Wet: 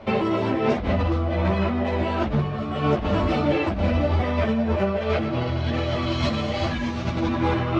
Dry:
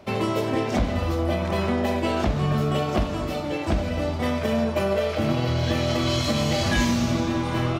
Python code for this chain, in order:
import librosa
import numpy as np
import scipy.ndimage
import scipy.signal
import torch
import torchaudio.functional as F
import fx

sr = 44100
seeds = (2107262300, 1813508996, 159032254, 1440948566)

y = scipy.signal.sosfilt(scipy.signal.butter(2, 3200.0, 'lowpass', fs=sr, output='sos'), x)
y = fx.over_compress(y, sr, threshold_db=-27.0, ratio=-1.0)
y = fx.ensemble(y, sr)
y = y * 10.0 ** (7.0 / 20.0)